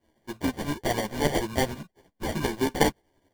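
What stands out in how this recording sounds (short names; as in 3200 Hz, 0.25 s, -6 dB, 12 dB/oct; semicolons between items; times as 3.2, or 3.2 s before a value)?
tremolo saw up 11 Hz, depth 60%; aliases and images of a low sample rate 1300 Hz, jitter 0%; a shimmering, thickened sound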